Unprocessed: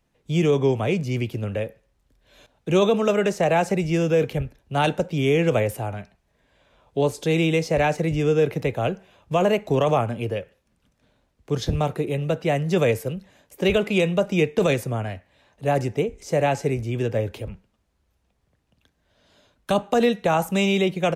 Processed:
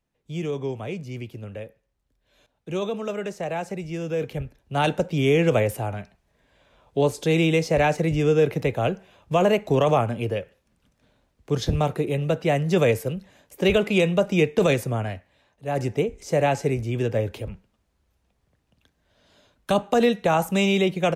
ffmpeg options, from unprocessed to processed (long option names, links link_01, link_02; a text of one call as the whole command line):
ffmpeg -i in.wav -af "volume=10dB,afade=type=in:start_time=4:duration=1.09:silence=0.334965,afade=type=out:start_time=15.1:duration=0.55:silence=0.316228,afade=type=in:start_time=15.65:duration=0.21:silence=0.334965" out.wav